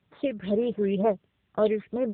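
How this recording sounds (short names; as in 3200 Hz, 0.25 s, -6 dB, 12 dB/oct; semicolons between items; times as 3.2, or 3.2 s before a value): a buzz of ramps at a fixed pitch in blocks of 8 samples; phasing stages 6, 2.1 Hz, lowest notch 780–3100 Hz; a quantiser's noise floor 12-bit, dither triangular; AMR-NB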